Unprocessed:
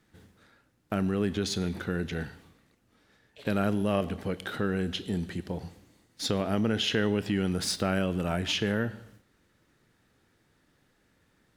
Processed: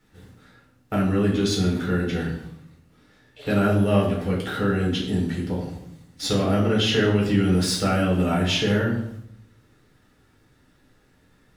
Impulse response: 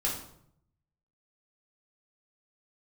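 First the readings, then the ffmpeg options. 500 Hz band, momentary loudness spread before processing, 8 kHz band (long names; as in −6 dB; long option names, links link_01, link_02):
+7.0 dB, 9 LU, +5.0 dB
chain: -filter_complex "[1:a]atrim=start_sample=2205[link_01];[0:a][link_01]afir=irnorm=-1:irlink=0"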